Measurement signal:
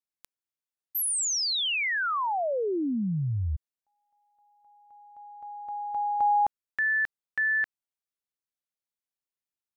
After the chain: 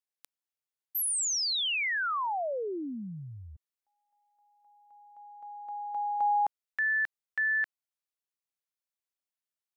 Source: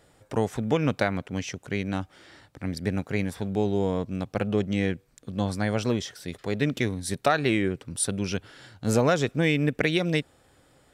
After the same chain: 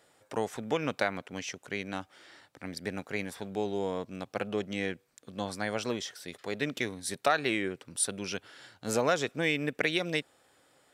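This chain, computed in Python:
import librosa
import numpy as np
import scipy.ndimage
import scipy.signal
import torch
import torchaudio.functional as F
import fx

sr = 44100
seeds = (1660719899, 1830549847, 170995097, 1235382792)

y = fx.highpass(x, sr, hz=500.0, slope=6)
y = F.gain(torch.from_numpy(y), -2.0).numpy()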